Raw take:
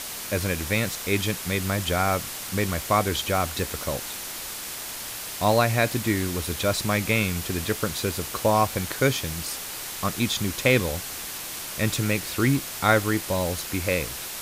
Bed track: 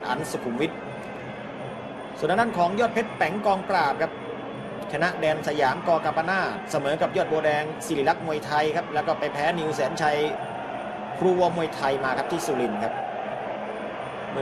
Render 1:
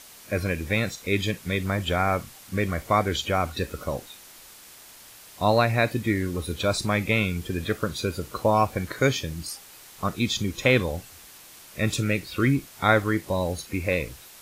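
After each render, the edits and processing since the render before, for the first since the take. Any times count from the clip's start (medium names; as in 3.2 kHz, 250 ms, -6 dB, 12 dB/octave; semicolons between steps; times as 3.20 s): noise print and reduce 13 dB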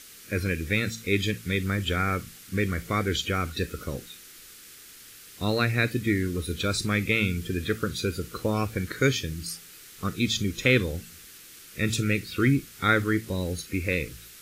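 high-order bell 780 Hz -13 dB 1.1 oct; de-hum 56.19 Hz, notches 4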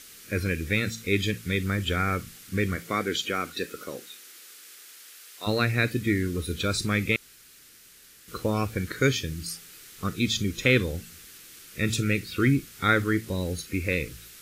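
2.75–5.46 s: high-pass 170 Hz -> 620 Hz; 7.16–8.28 s: room tone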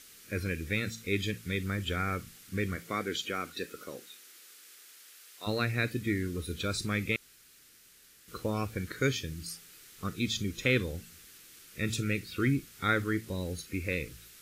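trim -6 dB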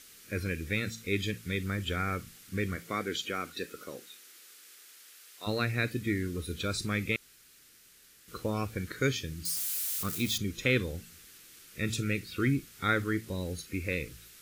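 9.45–10.38 s: zero-crossing glitches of -29.5 dBFS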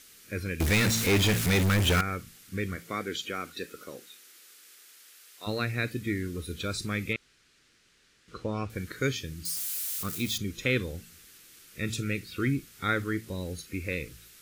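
0.60–2.01 s: power-law waveshaper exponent 0.35; 7.13–8.70 s: distance through air 93 m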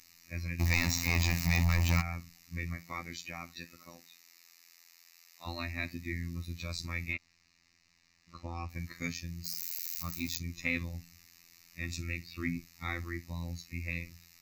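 static phaser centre 2.2 kHz, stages 8; robot voice 85.1 Hz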